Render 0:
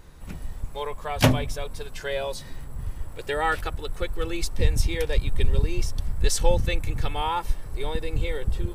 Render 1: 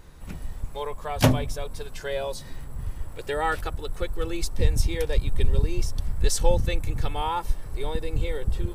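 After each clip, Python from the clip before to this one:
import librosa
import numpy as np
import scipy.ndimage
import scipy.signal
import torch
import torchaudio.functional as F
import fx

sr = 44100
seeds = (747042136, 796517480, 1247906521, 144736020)

y = fx.dynamic_eq(x, sr, hz=2400.0, q=0.88, threshold_db=-45.0, ratio=4.0, max_db=-4)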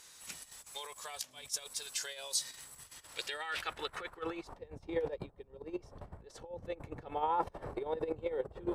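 y = fx.over_compress(x, sr, threshold_db=-32.0, ratio=-1.0)
y = fx.filter_sweep_bandpass(y, sr, from_hz=7000.0, to_hz=600.0, start_s=2.85, end_s=4.77, q=1.1)
y = y * librosa.db_to_amplitude(3.5)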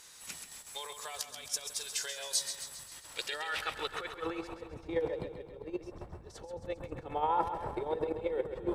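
y = fx.echo_feedback(x, sr, ms=134, feedback_pct=57, wet_db=-9.0)
y = y * librosa.db_to_amplitude(2.0)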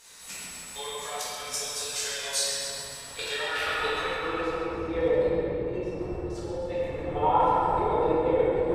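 y = fx.room_shoebox(x, sr, seeds[0], volume_m3=180.0, walls='hard', distance_m=1.7)
y = y * librosa.db_to_amplitude(-2.5)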